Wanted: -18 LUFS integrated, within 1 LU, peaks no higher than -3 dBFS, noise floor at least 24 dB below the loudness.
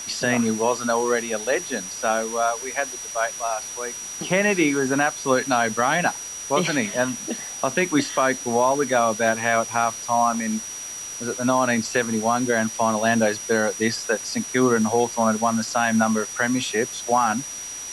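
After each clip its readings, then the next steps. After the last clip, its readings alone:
steady tone 5.8 kHz; tone level -32 dBFS; noise floor -34 dBFS; noise floor target -47 dBFS; loudness -22.5 LUFS; peak level -7.5 dBFS; loudness target -18.0 LUFS
-> band-stop 5.8 kHz, Q 30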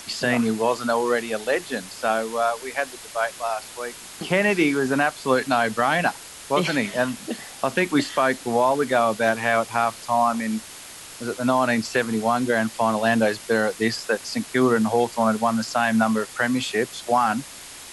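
steady tone not found; noise floor -41 dBFS; noise floor target -47 dBFS
-> noise reduction 6 dB, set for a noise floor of -41 dBFS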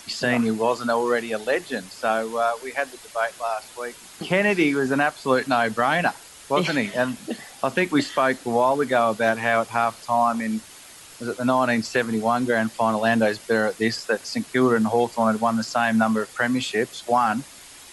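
noise floor -45 dBFS; noise floor target -47 dBFS
-> noise reduction 6 dB, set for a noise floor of -45 dBFS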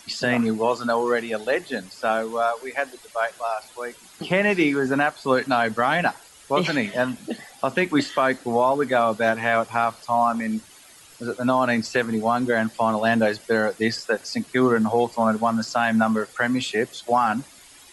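noise floor -49 dBFS; loudness -22.5 LUFS; peak level -8.5 dBFS; loudness target -18.0 LUFS
-> trim +4.5 dB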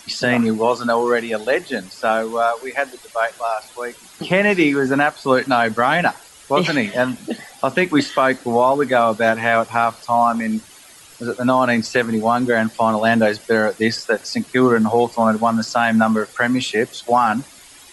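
loudness -18.0 LUFS; peak level -4.0 dBFS; noise floor -44 dBFS

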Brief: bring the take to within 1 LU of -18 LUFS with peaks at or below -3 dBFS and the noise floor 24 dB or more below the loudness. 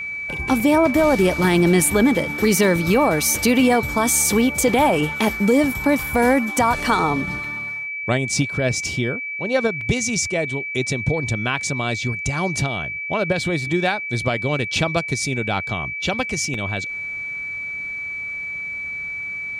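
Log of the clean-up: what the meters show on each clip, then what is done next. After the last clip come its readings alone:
dropouts 5; longest dropout 2.7 ms; steady tone 2.3 kHz; tone level -26 dBFS; loudness -20.0 LUFS; peak level -6.5 dBFS; loudness target -18.0 LUFS
-> interpolate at 0.60/6.80/7.44/9.81/16.54 s, 2.7 ms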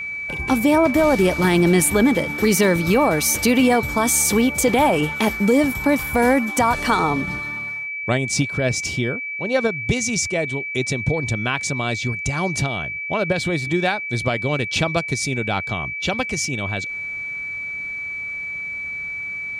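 dropouts 0; steady tone 2.3 kHz; tone level -26 dBFS
-> band-stop 2.3 kHz, Q 30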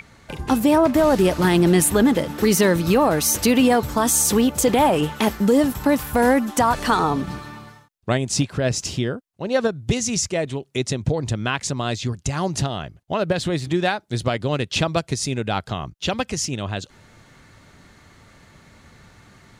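steady tone not found; loudness -20.5 LUFS; peak level -7.5 dBFS; loudness target -18.0 LUFS
-> trim +2.5 dB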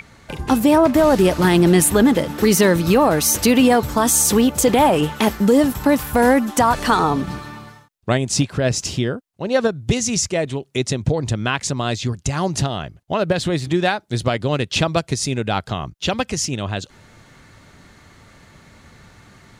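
loudness -18.0 LUFS; peak level -5.0 dBFS; noise floor -52 dBFS

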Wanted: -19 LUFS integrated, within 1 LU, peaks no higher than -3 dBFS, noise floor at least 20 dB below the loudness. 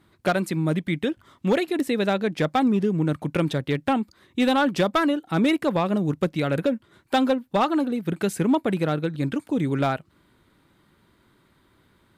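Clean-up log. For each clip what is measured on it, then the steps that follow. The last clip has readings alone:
clipped samples 0.7%; clipping level -14.0 dBFS; loudness -24.0 LUFS; peak level -14.0 dBFS; loudness target -19.0 LUFS
-> clip repair -14 dBFS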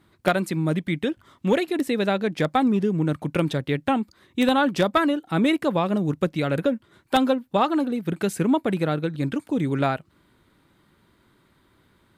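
clipped samples 0.0%; loudness -24.0 LUFS; peak level -5.0 dBFS; loudness target -19.0 LUFS
-> trim +5 dB; peak limiter -3 dBFS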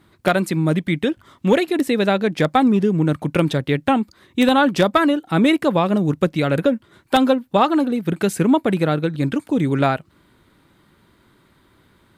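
loudness -19.0 LUFS; peak level -3.0 dBFS; noise floor -58 dBFS

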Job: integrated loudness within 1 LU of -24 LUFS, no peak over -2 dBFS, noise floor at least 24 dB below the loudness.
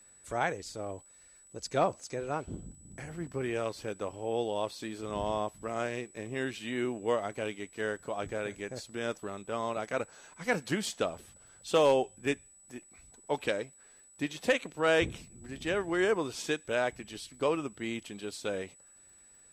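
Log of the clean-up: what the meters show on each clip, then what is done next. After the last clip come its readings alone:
tick rate 19 per s; steady tone 7.9 kHz; tone level -56 dBFS; loudness -33.5 LUFS; peak level -15.5 dBFS; loudness target -24.0 LUFS
-> de-click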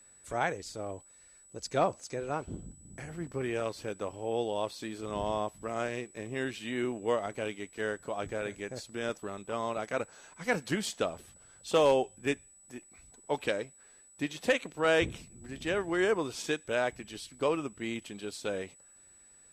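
tick rate 0 per s; steady tone 7.9 kHz; tone level -56 dBFS
-> band-stop 7.9 kHz, Q 30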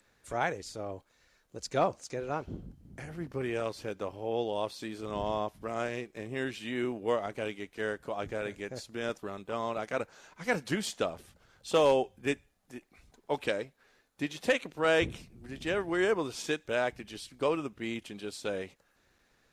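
steady tone not found; loudness -33.5 LUFS; peak level -15.5 dBFS; loudness target -24.0 LUFS
-> trim +9.5 dB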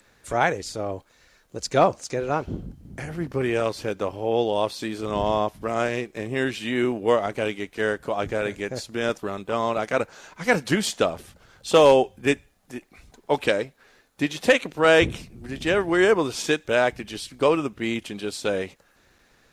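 loudness -24.0 LUFS; peak level -6.0 dBFS; noise floor -61 dBFS

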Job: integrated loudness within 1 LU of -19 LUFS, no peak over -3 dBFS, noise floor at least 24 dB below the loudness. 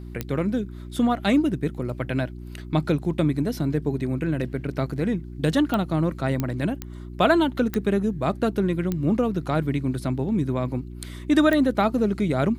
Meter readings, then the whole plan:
clicks found 7; hum 60 Hz; highest harmonic 360 Hz; hum level -35 dBFS; loudness -24.5 LUFS; peak level -6.0 dBFS; loudness target -19.0 LUFS
-> de-click; de-hum 60 Hz, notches 6; trim +5.5 dB; peak limiter -3 dBFS

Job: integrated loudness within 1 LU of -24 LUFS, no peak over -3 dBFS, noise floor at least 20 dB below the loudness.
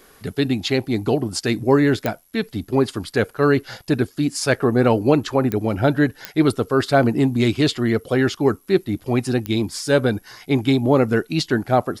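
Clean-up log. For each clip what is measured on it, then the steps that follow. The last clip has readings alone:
clicks found 4; loudness -20.0 LUFS; peak level -3.0 dBFS; loudness target -24.0 LUFS
-> de-click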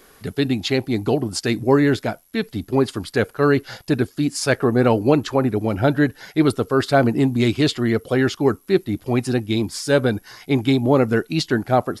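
clicks found 0; loudness -20.0 LUFS; peak level -3.0 dBFS; loudness target -24.0 LUFS
-> trim -4 dB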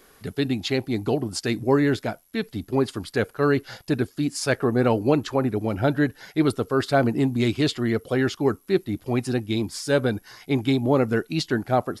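loudness -24.0 LUFS; peak level -7.0 dBFS; noise floor -57 dBFS

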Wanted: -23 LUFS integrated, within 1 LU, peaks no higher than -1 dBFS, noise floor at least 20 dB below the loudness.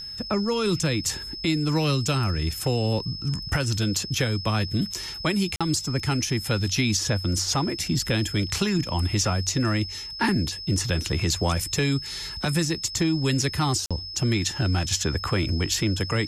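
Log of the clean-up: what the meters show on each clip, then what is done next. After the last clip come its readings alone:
dropouts 2; longest dropout 46 ms; steady tone 5.2 kHz; tone level -34 dBFS; loudness -25.0 LUFS; peak level -11.0 dBFS; loudness target -23.0 LUFS
-> interpolate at 5.56/13.86 s, 46 ms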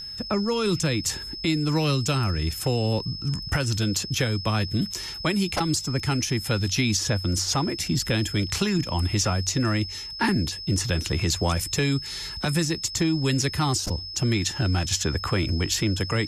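dropouts 0; steady tone 5.2 kHz; tone level -34 dBFS
-> band-stop 5.2 kHz, Q 30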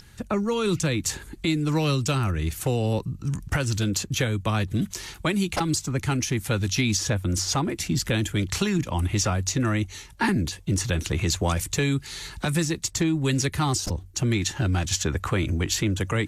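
steady tone not found; loudness -25.5 LUFS; peak level -11.5 dBFS; loudness target -23.0 LUFS
-> trim +2.5 dB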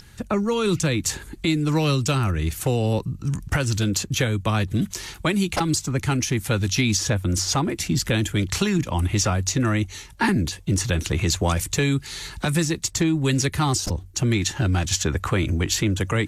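loudness -23.0 LUFS; peak level -9.5 dBFS; noise floor -43 dBFS

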